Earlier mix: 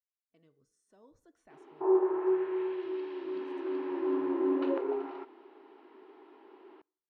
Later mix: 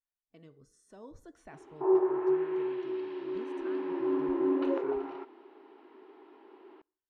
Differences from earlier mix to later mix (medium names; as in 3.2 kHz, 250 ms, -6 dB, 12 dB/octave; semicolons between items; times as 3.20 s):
speech +10.0 dB; master: add bass shelf 96 Hz +10 dB